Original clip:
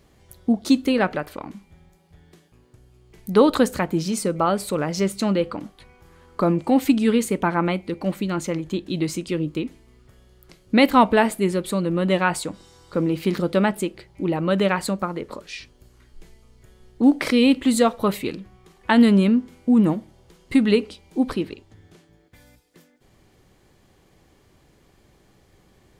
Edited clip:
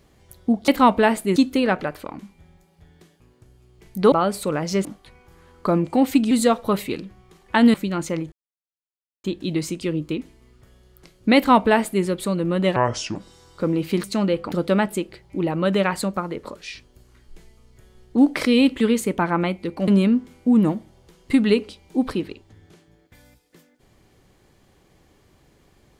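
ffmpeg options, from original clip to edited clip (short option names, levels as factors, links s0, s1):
-filter_complex "[0:a]asplit=14[s0][s1][s2][s3][s4][s5][s6][s7][s8][s9][s10][s11][s12][s13];[s0]atrim=end=0.682[s14];[s1]atrim=start=10.818:end=11.502[s15];[s2]atrim=start=0.678:end=3.442[s16];[s3]atrim=start=4.378:end=5.112[s17];[s4]atrim=start=5.588:end=7.052[s18];[s5]atrim=start=17.658:end=19.092[s19];[s6]atrim=start=8.118:end=8.7,asetpts=PTS-STARTPTS,afade=t=out:st=0.578:d=0.004:c=hsin,apad=pad_dur=0.92[s20];[s7]atrim=start=8.7:end=12.224,asetpts=PTS-STARTPTS,afade=t=in:d=0.004:c=hsin[s21];[s8]atrim=start=12.22:end=12.49,asetpts=PTS-STARTPTS,asetrate=29988,aresample=44100,atrim=end_sample=17510,asetpts=PTS-STARTPTS[s22];[s9]atrim=start=12.486:end=13.372[s23];[s10]atrim=start=5.108:end=5.592[s24];[s11]atrim=start=13.368:end=17.662[s25];[s12]atrim=start=7.048:end=8.122[s26];[s13]atrim=start=19.088[s27];[s14][s15]acrossfade=d=0.004:c1=hsin:c2=hsin[s28];[s28][s16]acrossfade=d=0.004:c1=hsin:c2=hsin[s29];[s29][s17]acrossfade=d=0.004:c1=hsin:c2=hsin[s30];[s30][s18]acrossfade=d=0.004:c1=hsin:c2=hsin[s31];[s31][s19]acrossfade=d=0.004:c1=hsin:c2=hsin[s32];[s20][s21]concat=n=2:v=0:a=1[s33];[s32][s33]acrossfade=d=0.004:c1=hsin:c2=hsin[s34];[s34][s22]acrossfade=d=0.004:c1=hsin:c2=hsin[s35];[s35][s23]acrossfade=d=0.004:c1=hsin:c2=hsin[s36];[s36][s24]acrossfade=d=0.004:c1=hsin:c2=hsin[s37];[s37][s25]acrossfade=d=0.004:c1=hsin:c2=hsin[s38];[s38][s26]acrossfade=d=0.004:c1=hsin:c2=hsin[s39];[s39][s27]acrossfade=d=0.004:c1=hsin:c2=hsin"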